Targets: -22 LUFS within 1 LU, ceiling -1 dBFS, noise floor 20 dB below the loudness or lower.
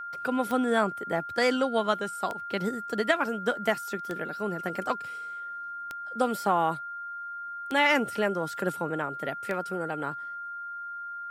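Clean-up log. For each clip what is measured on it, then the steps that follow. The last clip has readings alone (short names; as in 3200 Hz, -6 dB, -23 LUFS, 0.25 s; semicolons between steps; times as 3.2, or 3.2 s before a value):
clicks 6; steady tone 1400 Hz; tone level -35 dBFS; loudness -29.5 LUFS; peak -9.5 dBFS; loudness target -22.0 LUFS
-> de-click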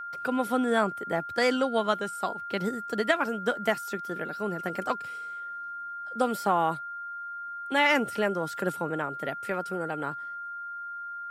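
clicks 0; steady tone 1400 Hz; tone level -35 dBFS
-> notch 1400 Hz, Q 30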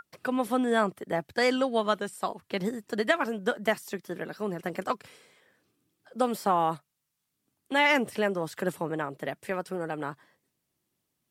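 steady tone none; loudness -29.5 LUFS; peak -9.5 dBFS; loudness target -22.0 LUFS
-> gain +7.5 dB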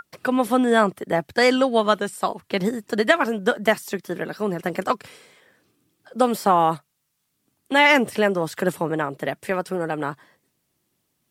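loudness -22.0 LUFS; peak -2.0 dBFS; noise floor -73 dBFS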